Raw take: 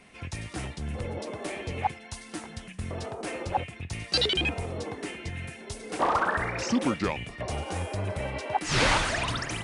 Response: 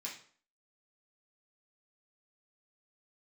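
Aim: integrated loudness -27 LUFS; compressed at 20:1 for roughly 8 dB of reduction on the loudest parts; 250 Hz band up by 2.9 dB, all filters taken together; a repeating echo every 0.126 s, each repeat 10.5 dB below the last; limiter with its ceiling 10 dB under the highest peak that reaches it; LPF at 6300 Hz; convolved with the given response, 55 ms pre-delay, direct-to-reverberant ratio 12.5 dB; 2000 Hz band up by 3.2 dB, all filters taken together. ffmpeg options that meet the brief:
-filter_complex "[0:a]lowpass=6.3k,equalizer=f=250:t=o:g=3.5,equalizer=f=2k:t=o:g=4,acompressor=threshold=-25dB:ratio=20,alimiter=level_in=1.5dB:limit=-24dB:level=0:latency=1,volume=-1.5dB,aecho=1:1:126|252|378:0.299|0.0896|0.0269,asplit=2[a][b];[1:a]atrim=start_sample=2205,adelay=55[c];[b][c]afir=irnorm=-1:irlink=0,volume=-11.5dB[d];[a][d]amix=inputs=2:normalize=0,volume=7.5dB"

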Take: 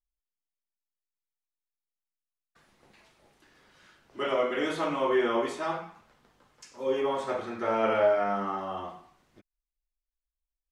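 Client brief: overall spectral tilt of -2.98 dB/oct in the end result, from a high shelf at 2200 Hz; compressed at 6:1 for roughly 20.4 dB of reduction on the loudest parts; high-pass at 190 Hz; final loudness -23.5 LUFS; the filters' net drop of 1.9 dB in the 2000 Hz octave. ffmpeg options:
-af "highpass=190,equalizer=f=2k:t=o:g=-7,highshelf=f=2.2k:g=8.5,acompressor=threshold=-42dB:ratio=6,volume=21.5dB"

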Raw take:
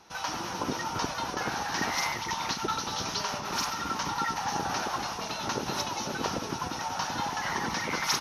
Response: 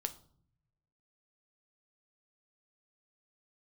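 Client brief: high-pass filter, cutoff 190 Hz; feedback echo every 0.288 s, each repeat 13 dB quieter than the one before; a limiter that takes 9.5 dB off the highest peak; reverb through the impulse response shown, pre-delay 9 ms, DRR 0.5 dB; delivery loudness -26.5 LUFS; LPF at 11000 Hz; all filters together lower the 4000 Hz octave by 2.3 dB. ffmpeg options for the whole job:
-filter_complex "[0:a]highpass=190,lowpass=11k,equalizer=f=4k:t=o:g=-3,alimiter=limit=-24dB:level=0:latency=1,aecho=1:1:288|576|864:0.224|0.0493|0.0108,asplit=2[a][b];[1:a]atrim=start_sample=2205,adelay=9[c];[b][c]afir=irnorm=-1:irlink=0,volume=0dB[d];[a][d]amix=inputs=2:normalize=0,volume=4dB"

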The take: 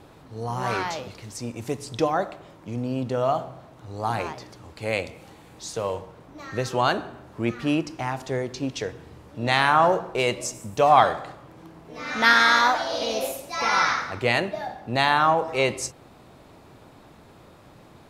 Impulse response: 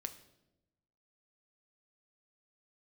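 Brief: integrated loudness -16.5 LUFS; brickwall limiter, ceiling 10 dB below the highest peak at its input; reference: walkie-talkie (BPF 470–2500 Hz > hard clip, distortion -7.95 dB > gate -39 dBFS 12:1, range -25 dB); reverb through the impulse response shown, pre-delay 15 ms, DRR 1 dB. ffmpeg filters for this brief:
-filter_complex "[0:a]alimiter=limit=-12.5dB:level=0:latency=1,asplit=2[a][b];[1:a]atrim=start_sample=2205,adelay=15[c];[b][c]afir=irnorm=-1:irlink=0,volume=1.5dB[d];[a][d]amix=inputs=2:normalize=0,highpass=470,lowpass=2.5k,asoftclip=type=hard:threshold=-23dB,agate=range=-25dB:threshold=-39dB:ratio=12,volume=13dB"

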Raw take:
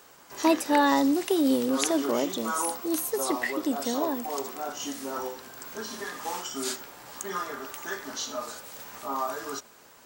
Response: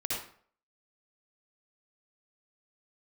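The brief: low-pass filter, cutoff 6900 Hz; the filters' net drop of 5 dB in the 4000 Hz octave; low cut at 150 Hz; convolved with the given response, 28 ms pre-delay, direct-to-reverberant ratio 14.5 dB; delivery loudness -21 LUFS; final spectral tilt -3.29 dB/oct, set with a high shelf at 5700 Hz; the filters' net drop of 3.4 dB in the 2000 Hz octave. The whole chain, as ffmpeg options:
-filter_complex "[0:a]highpass=150,lowpass=6.9k,equalizer=f=2k:t=o:g=-3,equalizer=f=4k:t=o:g=-3,highshelf=f=5.7k:g=-5,asplit=2[a][b];[1:a]atrim=start_sample=2205,adelay=28[c];[b][c]afir=irnorm=-1:irlink=0,volume=-19.5dB[d];[a][d]amix=inputs=2:normalize=0,volume=8.5dB"

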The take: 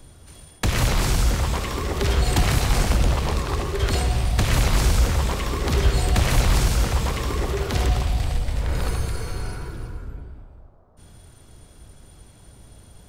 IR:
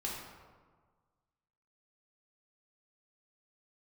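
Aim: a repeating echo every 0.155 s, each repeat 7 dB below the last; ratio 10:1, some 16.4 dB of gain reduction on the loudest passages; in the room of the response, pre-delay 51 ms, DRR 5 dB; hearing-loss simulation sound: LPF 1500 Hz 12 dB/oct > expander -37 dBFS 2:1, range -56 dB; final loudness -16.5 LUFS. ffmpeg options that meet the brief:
-filter_complex "[0:a]acompressor=threshold=-31dB:ratio=10,aecho=1:1:155|310|465|620|775:0.447|0.201|0.0905|0.0407|0.0183,asplit=2[a][b];[1:a]atrim=start_sample=2205,adelay=51[c];[b][c]afir=irnorm=-1:irlink=0,volume=-7.5dB[d];[a][d]amix=inputs=2:normalize=0,lowpass=1.5k,agate=range=-56dB:threshold=-37dB:ratio=2,volume=18.5dB"

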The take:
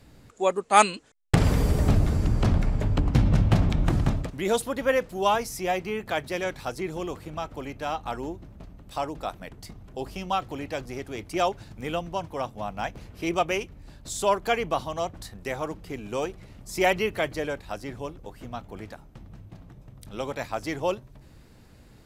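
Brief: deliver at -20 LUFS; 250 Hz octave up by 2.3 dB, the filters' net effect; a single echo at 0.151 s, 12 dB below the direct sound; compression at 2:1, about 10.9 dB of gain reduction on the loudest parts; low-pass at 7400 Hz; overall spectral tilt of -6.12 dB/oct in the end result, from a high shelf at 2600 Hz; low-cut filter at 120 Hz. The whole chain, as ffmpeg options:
-af "highpass=120,lowpass=7.4k,equalizer=f=250:t=o:g=4,highshelf=f=2.6k:g=-8.5,acompressor=threshold=-33dB:ratio=2,aecho=1:1:151:0.251,volume=14.5dB"

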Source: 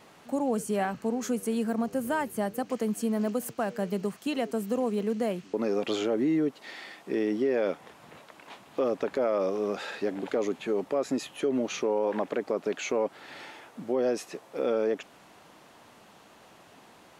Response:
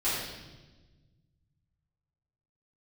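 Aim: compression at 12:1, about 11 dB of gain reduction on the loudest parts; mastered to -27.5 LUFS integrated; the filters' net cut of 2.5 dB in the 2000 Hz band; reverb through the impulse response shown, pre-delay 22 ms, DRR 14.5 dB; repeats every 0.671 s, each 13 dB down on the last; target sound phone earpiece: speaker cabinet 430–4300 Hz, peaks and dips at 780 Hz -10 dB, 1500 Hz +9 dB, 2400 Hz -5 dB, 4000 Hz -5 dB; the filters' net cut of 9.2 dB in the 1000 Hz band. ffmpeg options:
-filter_complex "[0:a]equalizer=f=1k:t=o:g=-6,equalizer=f=2k:t=o:g=-7,acompressor=threshold=-35dB:ratio=12,aecho=1:1:671|1342|2013:0.224|0.0493|0.0108,asplit=2[a][b];[1:a]atrim=start_sample=2205,adelay=22[c];[b][c]afir=irnorm=-1:irlink=0,volume=-24.5dB[d];[a][d]amix=inputs=2:normalize=0,highpass=430,equalizer=f=780:t=q:w=4:g=-10,equalizer=f=1.5k:t=q:w=4:g=9,equalizer=f=2.4k:t=q:w=4:g=-5,equalizer=f=4k:t=q:w=4:g=-5,lowpass=f=4.3k:w=0.5412,lowpass=f=4.3k:w=1.3066,volume=18dB"

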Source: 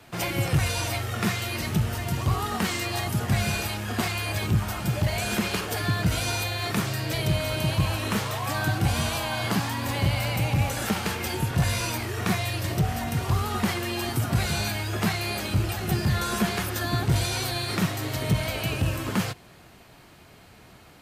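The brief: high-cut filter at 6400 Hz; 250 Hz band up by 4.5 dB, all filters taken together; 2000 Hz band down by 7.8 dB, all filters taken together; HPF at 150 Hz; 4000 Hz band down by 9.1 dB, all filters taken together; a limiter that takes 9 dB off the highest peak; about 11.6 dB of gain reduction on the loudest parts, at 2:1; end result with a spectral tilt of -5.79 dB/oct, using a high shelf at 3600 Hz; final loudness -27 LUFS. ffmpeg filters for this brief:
-af "highpass=150,lowpass=6.4k,equalizer=f=250:t=o:g=8,equalizer=f=2k:t=o:g=-7,highshelf=f=3.6k:g=-7,equalizer=f=4k:t=o:g=-4,acompressor=threshold=-39dB:ratio=2,volume=11.5dB,alimiter=limit=-17dB:level=0:latency=1"

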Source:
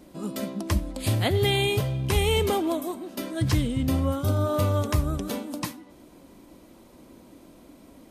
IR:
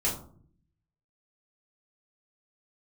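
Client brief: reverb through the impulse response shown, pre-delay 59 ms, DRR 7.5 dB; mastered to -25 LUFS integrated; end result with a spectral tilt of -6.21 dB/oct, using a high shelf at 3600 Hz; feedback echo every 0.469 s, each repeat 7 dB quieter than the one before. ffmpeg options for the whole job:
-filter_complex "[0:a]highshelf=f=3.6k:g=-8,aecho=1:1:469|938|1407|1876|2345:0.447|0.201|0.0905|0.0407|0.0183,asplit=2[a][b];[1:a]atrim=start_sample=2205,adelay=59[c];[b][c]afir=irnorm=-1:irlink=0,volume=-15.5dB[d];[a][d]amix=inputs=2:normalize=0,volume=-0.5dB"

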